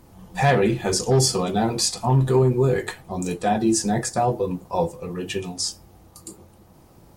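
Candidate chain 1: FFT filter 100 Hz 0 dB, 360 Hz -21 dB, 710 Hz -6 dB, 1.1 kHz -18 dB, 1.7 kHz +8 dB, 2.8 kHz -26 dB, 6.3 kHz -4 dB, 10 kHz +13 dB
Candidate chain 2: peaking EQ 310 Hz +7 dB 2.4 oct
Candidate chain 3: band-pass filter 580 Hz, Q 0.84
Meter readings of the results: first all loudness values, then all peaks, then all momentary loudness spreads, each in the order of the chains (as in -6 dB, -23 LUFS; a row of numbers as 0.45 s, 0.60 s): -24.5 LUFS, -17.5 LUFS, -26.0 LUFS; -4.5 dBFS, -3.5 dBFS, -10.0 dBFS; 16 LU, 12 LU, 12 LU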